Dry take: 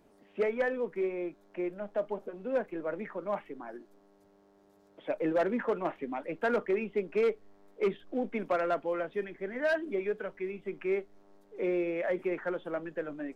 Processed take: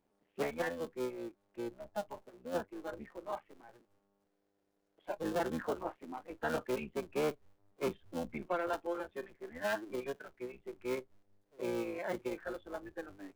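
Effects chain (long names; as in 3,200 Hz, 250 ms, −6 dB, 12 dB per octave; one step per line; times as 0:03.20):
sub-harmonics by changed cycles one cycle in 3, muted
noise reduction from a noise print of the clip's start 10 dB
level −4 dB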